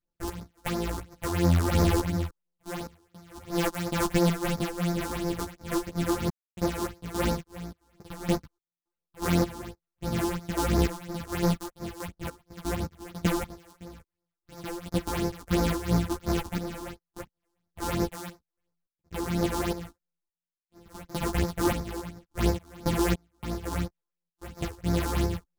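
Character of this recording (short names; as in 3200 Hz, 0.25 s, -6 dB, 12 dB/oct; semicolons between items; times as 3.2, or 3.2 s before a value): a buzz of ramps at a fixed pitch in blocks of 256 samples; phasing stages 6, 2.9 Hz, lowest notch 140–3000 Hz; random-step tremolo, depth 100%; a shimmering, thickened sound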